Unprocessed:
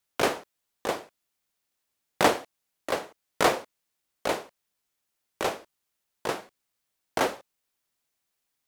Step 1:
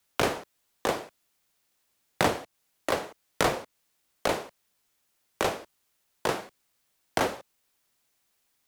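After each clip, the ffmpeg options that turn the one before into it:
ffmpeg -i in.wav -filter_complex "[0:a]acrossover=split=160[link_01][link_02];[link_02]acompressor=threshold=-32dB:ratio=3[link_03];[link_01][link_03]amix=inputs=2:normalize=0,volume=7dB" out.wav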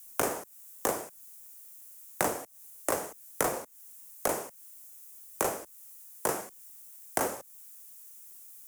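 ffmpeg -i in.wav -filter_complex "[0:a]aexciter=amount=7.4:drive=8.6:freq=5900,acrossover=split=210|2000[link_01][link_02][link_03];[link_01]acompressor=threshold=-47dB:ratio=4[link_04];[link_02]acompressor=threshold=-26dB:ratio=4[link_05];[link_03]acompressor=threshold=-35dB:ratio=4[link_06];[link_04][link_05][link_06]amix=inputs=3:normalize=0,acrusher=bits=4:mode=log:mix=0:aa=0.000001" out.wav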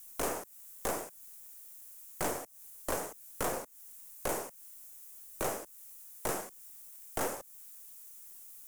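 ffmpeg -i in.wav -af "aeval=exprs='(tanh(31.6*val(0)+0.6)-tanh(0.6))/31.6':channel_layout=same,volume=2dB" out.wav

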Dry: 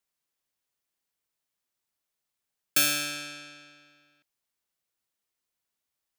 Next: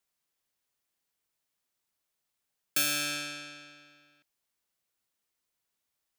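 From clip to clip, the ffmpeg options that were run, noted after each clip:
ffmpeg -i in.wav -af "alimiter=limit=-18.5dB:level=0:latency=1:release=299,volume=1.5dB" out.wav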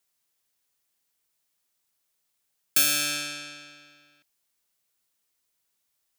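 ffmpeg -i in.wav -af "highshelf=frequency=3700:gain=6,volume=2dB" out.wav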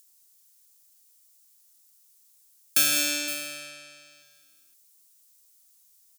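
ffmpeg -i in.wav -filter_complex "[0:a]aecho=1:1:160|201|516:0.266|0.299|0.2,acrossover=split=310|870|5000[link_01][link_02][link_03][link_04];[link_04]acompressor=mode=upward:threshold=-46dB:ratio=2.5[link_05];[link_01][link_02][link_03][link_05]amix=inputs=4:normalize=0" out.wav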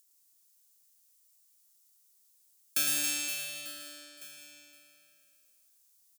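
ffmpeg -i in.wav -af "aecho=1:1:110|275|522.5|893.8|1451:0.631|0.398|0.251|0.158|0.1,volume=-8dB" out.wav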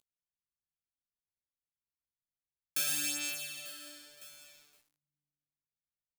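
ffmpeg -i in.wav -filter_complex "[0:a]acrossover=split=200[link_01][link_02];[link_02]aeval=exprs='val(0)*gte(abs(val(0)),0.00251)':channel_layout=same[link_03];[link_01][link_03]amix=inputs=2:normalize=0,flanger=delay=15:depth=5.4:speed=0.46" out.wav

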